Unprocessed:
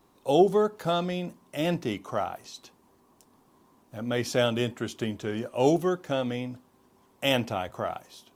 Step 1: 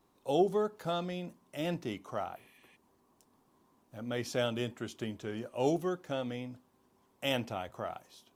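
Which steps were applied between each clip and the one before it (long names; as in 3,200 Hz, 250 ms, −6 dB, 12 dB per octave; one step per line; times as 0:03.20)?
healed spectral selection 0:02.39–0:02.73, 1,700–10,000 Hz before
level −7.5 dB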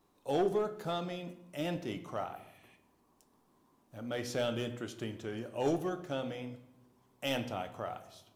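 hum removal 130.4 Hz, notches 34
in parallel at −7 dB: wave folding −25.5 dBFS
on the sum: rectangular room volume 280 cubic metres, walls mixed, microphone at 0.37 metres
level −4 dB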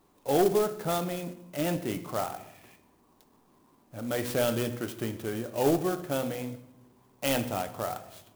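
converter with an unsteady clock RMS 0.052 ms
level +6.5 dB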